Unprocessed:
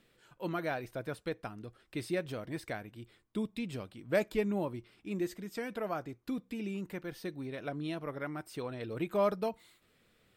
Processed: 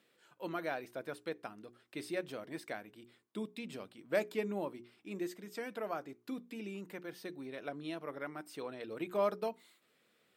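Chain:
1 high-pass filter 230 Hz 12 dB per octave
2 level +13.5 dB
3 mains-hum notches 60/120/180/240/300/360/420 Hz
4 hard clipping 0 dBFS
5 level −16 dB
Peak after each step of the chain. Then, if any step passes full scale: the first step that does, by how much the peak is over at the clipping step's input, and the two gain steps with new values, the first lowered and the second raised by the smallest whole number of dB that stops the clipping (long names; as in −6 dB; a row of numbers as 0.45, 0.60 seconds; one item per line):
−15.5, −2.0, −2.5, −2.5, −18.5 dBFS
no step passes full scale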